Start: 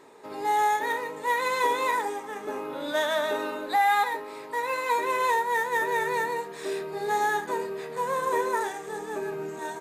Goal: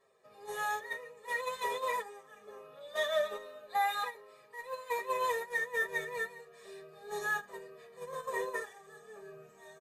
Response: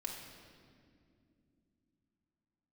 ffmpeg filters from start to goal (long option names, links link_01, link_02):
-filter_complex "[0:a]agate=range=-10dB:threshold=-26dB:ratio=16:detection=peak,aecho=1:1:1.7:0.98,asplit=2[link_01][link_02];[link_02]adelay=6.9,afreqshift=-2.4[link_03];[link_01][link_03]amix=inputs=2:normalize=1,volume=-6.5dB"